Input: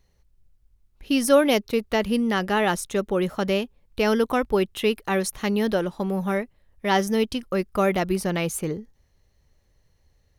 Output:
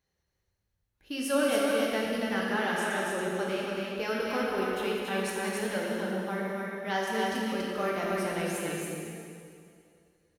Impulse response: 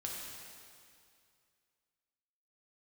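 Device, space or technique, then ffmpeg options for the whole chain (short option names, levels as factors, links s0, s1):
stadium PA: -filter_complex "[0:a]highpass=f=180:p=1,equalizer=f=1600:t=o:w=0.35:g=6,aecho=1:1:189.5|279.9:0.282|0.708[s0];[1:a]atrim=start_sample=2205[s1];[s0][s1]afir=irnorm=-1:irlink=0,volume=0.376"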